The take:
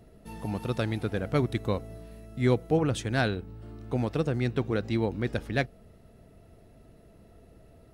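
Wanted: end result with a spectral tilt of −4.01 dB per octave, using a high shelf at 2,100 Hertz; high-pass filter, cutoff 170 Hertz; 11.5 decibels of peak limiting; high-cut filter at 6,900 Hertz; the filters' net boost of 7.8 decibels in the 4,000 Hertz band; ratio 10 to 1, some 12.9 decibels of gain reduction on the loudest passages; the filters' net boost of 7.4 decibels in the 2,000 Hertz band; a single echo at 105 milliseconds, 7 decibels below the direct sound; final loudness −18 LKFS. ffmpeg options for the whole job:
ffmpeg -i in.wav -af "highpass=170,lowpass=6900,equalizer=frequency=2000:width_type=o:gain=6.5,highshelf=frequency=2100:gain=4.5,equalizer=frequency=4000:width_type=o:gain=3.5,acompressor=threshold=-31dB:ratio=10,alimiter=level_in=3.5dB:limit=-24dB:level=0:latency=1,volume=-3.5dB,aecho=1:1:105:0.447,volume=22.5dB" out.wav

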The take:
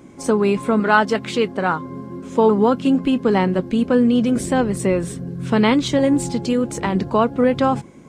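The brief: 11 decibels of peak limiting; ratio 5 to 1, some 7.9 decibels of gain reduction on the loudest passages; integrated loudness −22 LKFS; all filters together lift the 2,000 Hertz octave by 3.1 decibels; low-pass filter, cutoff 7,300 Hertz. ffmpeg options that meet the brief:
ffmpeg -i in.wav -af "lowpass=7300,equalizer=frequency=2000:width_type=o:gain=4.5,acompressor=threshold=-18dB:ratio=5,volume=4.5dB,alimiter=limit=-12.5dB:level=0:latency=1" out.wav

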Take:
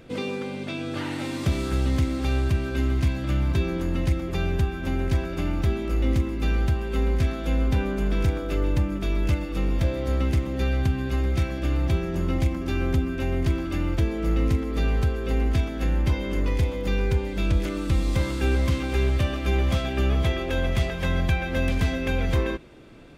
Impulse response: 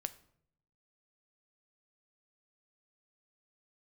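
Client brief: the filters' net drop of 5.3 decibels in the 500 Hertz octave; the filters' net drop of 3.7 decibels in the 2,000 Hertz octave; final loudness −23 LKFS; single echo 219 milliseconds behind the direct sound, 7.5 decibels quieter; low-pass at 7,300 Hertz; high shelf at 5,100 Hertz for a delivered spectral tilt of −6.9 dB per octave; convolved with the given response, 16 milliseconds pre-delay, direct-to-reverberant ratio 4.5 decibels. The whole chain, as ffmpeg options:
-filter_complex "[0:a]lowpass=7300,equalizer=frequency=500:width_type=o:gain=-7,equalizer=frequency=2000:width_type=o:gain=-3.5,highshelf=frequency=5100:gain=-5.5,aecho=1:1:219:0.422,asplit=2[link_01][link_02];[1:a]atrim=start_sample=2205,adelay=16[link_03];[link_02][link_03]afir=irnorm=-1:irlink=0,volume=-3dB[link_04];[link_01][link_04]amix=inputs=2:normalize=0,volume=0.5dB"

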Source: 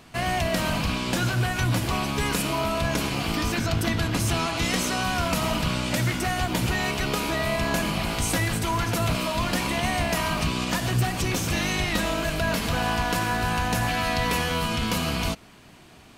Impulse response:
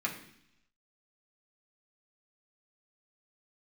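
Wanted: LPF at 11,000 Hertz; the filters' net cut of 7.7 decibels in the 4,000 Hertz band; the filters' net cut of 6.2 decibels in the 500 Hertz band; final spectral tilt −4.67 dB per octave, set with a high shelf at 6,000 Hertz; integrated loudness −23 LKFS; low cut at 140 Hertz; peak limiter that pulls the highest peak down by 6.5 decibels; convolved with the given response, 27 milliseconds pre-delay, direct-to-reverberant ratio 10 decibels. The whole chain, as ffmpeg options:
-filter_complex "[0:a]highpass=140,lowpass=11000,equalizer=frequency=500:width_type=o:gain=-9,equalizer=frequency=4000:width_type=o:gain=-8,highshelf=frequency=6000:gain=-7.5,alimiter=limit=-21dB:level=0:latency=1,asplit=2[link_01][link_02];[1:a]atrim=start_sample=2205,adelay=27[link_03];[link_02][link_03]afir=irnorm=-1:irlink=0,volume=-15.5dB[link_04];[link_01][link_04]amix=inputs=2:normalize=0,volume=7dB"

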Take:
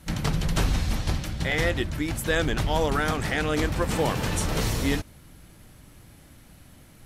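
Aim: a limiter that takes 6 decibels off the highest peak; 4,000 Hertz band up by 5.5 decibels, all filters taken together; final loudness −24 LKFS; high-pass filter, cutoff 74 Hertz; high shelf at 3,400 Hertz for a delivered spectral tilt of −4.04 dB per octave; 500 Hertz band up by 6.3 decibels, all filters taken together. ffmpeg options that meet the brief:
ffmpeg -i in.wav -af "highpass=74,equalizer=frequency=500:width_type=o:gain=7,highshelf=frequency=3400:gain=5,equalizer=frequency=4000:width_type=o:gain=3.5,volume=1dB,alimiter=limit=-12.5dB:level=0:latency=1" out.wav

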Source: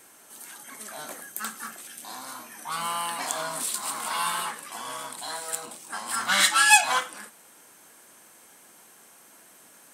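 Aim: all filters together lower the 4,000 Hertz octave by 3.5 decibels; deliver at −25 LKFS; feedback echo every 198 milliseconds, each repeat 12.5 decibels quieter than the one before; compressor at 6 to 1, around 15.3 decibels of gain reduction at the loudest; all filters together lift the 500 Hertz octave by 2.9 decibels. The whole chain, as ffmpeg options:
ffmpeg -i in.wav -af "equalizer=frequency=500:width_type=o:gain=4,equalizer=frequency=4000:width_type=o:gain=-4.5,acompressor=threshold=-28dB:ratio=6,aecho=1:1:198|396|594:0.237|0.0569|0.0137,volume=8dB" out.wav

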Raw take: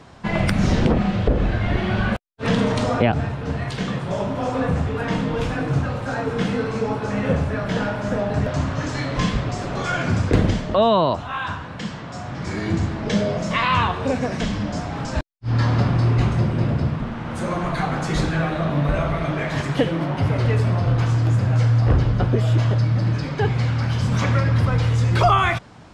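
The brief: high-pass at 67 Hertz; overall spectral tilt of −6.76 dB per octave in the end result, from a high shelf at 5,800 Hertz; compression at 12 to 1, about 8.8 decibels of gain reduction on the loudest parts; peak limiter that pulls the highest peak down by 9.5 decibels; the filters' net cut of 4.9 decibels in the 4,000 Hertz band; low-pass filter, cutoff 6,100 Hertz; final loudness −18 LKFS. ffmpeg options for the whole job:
ffmpeg -i in.wav -af "highpass=67,lowpass=6100,equalizer=frequency=4000:width_type=o:gain=-4,highshelf=frequency=5800:gain=-6,acompressor=threshold=-21dB:ratio=12,volume=11dB,alimiter=limit=-9.5dB:level=0:latency=1" out.wav

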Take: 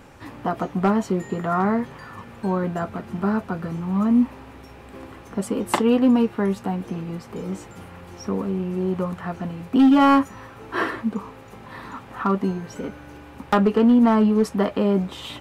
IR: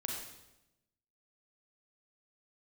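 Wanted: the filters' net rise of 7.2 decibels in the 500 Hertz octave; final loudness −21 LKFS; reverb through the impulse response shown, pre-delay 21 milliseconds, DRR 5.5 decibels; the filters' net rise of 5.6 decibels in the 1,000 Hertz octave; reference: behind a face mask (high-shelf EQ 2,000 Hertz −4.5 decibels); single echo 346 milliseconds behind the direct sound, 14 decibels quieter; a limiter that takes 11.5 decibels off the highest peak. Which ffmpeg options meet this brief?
-filter_complex "[0:a]equalizer=frequency=500:width_type=o:gain=8,equalizer=frequency=1000:width_type=o:gain=5.5,alimiter=limit=-13.5dB:level=0:latency=1,aecho=1:1:346:0.2,asplit=2[link_01][link_02];[1:a]atrim=start_sample=2205,adelay=21[link_03];[link_02][link_03]afir=irnorm=-1:irlink=0,volume=-6.5dB[link_04];[link_01][link_04]amix=inputs=2:normalize=0,highshelf=frequency=2000:gain=-4.5,volume=1.5dB"

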